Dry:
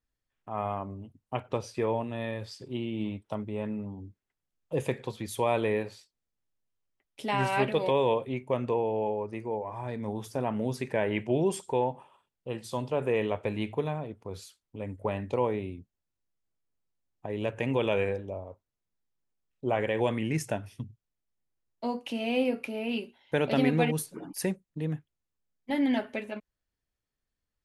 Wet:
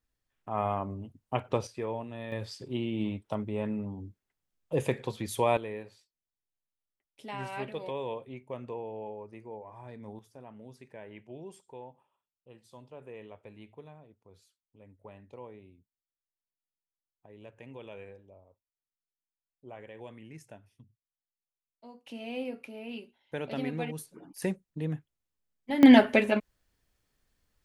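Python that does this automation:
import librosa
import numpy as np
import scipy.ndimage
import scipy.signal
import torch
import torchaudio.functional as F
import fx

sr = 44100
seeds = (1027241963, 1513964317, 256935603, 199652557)

y = fx.gain(x, sr, db=fx.steps((0.0, 2.0), (1.67, -6.0), (2.32, 1.0), (5.57, -10.5), (10.19, -18.5), (22.07, -9.0), (24.42, -1.0), (25.83, 11.5)))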